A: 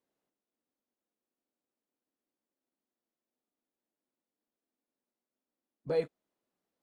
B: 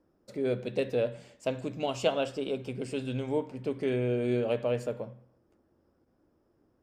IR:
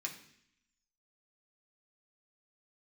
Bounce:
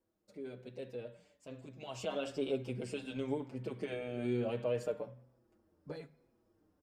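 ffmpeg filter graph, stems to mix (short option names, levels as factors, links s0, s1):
-filter_complex "[0:a]acompressor=threshold=0.0316:ratio=6,volume=0.631,asplit=2[s0][s1];[s1]volume=0.316[s2];[1:a]alimiter=limit=0.075:level=0:latency=1:release=23,volume=0.891,afade=t=in:st=1.72:d=0.46:silence=0.334965[s3];[2:a]atrim=start_sample=2205[s4];[s2][s4]afir=irnorm=-1:irlink=0[s5];[s0][s3][s5]amix=inputs=3:normalize=0,asplit=2[s6][s7];[s7]adelay=5.7,afreqshift=-1.1[s8];[s6][s8]amix=inputs=2:normalize=1"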